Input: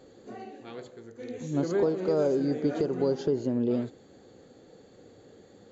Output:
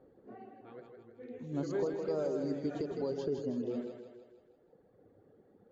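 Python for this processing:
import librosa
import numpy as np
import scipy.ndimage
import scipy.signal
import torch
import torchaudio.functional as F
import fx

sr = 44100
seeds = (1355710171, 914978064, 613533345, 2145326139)

y = fx.env_lowpass(x, sr, base_hz=1200.0, full_db=-22.0)
y = fx.dereverb_blind(y, sr, rt60_s=1.8)
y = fx.echo_split(y, sr, split_hz=340.0, low_ms=109, high_ms=160, feedback_pct=52, wet_db=-5.5)
y = y * librosa.db_to_amplitude(-7.5)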